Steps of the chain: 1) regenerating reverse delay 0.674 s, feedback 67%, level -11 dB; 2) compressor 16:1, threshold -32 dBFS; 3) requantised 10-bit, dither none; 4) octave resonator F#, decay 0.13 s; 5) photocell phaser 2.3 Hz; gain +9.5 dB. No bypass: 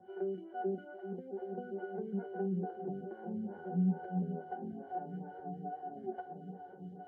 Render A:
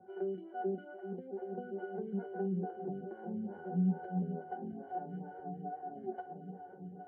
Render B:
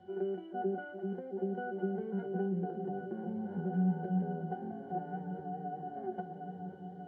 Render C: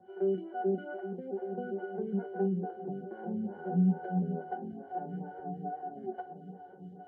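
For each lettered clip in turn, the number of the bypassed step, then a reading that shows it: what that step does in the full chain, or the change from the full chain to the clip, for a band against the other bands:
3, distortion -28 dB; 5, crest factor change -1.5 dB; 2, mean gain reduction 3.5 dB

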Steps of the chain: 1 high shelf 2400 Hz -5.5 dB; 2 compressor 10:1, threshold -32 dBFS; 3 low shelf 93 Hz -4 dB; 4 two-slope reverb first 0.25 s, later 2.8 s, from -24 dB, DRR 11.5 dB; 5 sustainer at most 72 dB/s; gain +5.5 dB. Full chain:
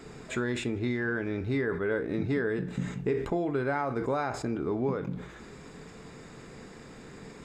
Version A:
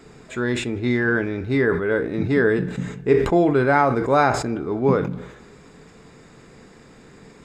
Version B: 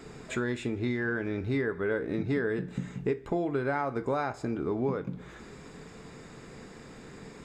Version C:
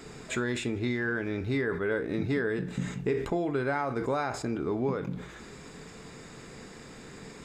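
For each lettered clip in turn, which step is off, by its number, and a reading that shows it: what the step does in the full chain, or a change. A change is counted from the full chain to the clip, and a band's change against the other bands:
2, mean gain reduction 5.5 dB; 5, 4 kHz band -2.0 dB; 1, 8 kHz band +3.5 dB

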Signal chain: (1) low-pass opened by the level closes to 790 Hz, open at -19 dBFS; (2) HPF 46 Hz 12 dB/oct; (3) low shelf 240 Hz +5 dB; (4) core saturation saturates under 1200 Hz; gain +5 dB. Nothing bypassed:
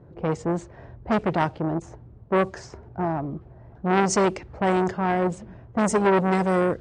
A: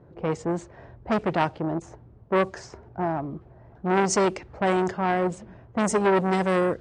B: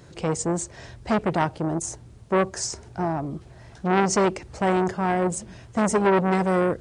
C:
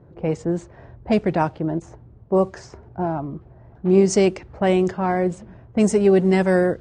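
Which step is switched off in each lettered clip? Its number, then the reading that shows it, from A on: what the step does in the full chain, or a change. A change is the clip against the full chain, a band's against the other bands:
3, 125 Hz band -2.5 dB; 1, 8 kHz band +5.0 dB; 4, crest factor change -4.0 dB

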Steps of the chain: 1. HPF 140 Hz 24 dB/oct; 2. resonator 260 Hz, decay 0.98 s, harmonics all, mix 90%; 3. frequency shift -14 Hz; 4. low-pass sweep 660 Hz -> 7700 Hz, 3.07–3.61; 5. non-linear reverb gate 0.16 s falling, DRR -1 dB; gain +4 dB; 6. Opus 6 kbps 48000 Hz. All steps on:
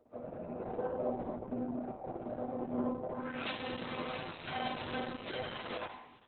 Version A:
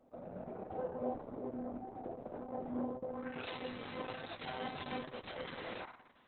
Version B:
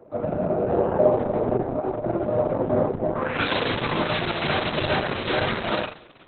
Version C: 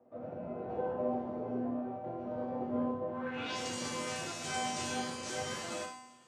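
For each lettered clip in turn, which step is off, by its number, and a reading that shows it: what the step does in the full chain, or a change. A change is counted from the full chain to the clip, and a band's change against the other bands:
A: 5, loudness change -4.0 LU; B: 2, 250 Hz band -4.0 dB; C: 6, 4 kHz band +2.0 dB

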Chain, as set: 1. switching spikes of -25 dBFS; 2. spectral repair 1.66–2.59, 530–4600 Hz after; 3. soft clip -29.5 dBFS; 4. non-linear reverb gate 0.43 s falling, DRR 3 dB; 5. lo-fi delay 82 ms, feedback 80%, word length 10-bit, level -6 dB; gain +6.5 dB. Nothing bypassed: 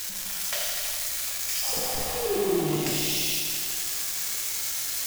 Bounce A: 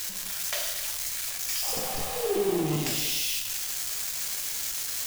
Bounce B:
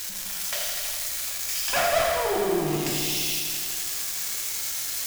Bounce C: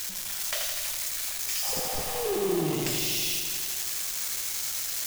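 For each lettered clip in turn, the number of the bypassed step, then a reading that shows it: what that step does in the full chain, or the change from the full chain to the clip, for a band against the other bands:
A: 5, 125 Hz band +2.0 dB; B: 2, 1 kHz band +7.0 dB; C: 4, loudness change -1.5 LU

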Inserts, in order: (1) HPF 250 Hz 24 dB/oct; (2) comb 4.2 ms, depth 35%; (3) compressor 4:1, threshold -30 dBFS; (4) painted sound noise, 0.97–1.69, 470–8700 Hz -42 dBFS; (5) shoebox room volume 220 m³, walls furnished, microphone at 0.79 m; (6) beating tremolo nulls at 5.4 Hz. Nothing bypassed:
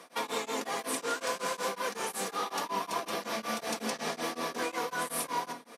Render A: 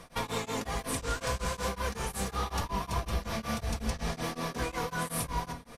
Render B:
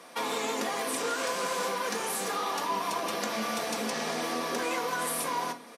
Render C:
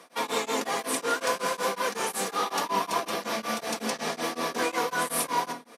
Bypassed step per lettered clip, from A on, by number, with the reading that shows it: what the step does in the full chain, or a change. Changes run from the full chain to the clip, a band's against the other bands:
1, 125 Hz band +19.0 dB; 6, crest factor change -3.0 dB; 3, momentary loudness spread change +2 LU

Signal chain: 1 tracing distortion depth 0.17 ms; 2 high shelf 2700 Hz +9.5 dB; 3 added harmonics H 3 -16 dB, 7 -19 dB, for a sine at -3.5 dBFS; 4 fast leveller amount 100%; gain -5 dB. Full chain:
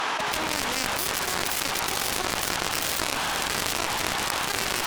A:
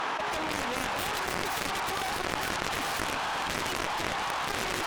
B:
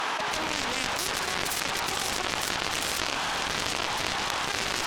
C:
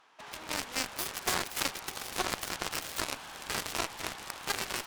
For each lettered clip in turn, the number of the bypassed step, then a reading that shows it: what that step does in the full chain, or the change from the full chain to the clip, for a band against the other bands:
2, 8 kHz band -7.5 dB; 1, crest factor change -2.5 dB; 4, crest factor change +1.5 dB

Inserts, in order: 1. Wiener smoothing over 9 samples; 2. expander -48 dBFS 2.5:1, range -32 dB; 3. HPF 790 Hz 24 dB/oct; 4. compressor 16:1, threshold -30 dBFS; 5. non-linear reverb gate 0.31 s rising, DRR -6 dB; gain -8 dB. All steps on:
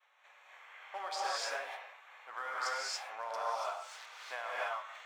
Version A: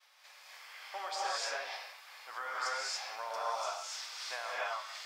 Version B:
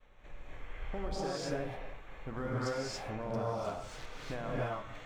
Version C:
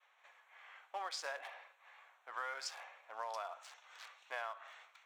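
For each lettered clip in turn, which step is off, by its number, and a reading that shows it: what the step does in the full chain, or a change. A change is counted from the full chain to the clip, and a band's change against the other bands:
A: 1, 8 kHz band +3.0 dB; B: 3, 500 Hz band +10.5 dB; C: 5, momentary loudness spread change +2 LU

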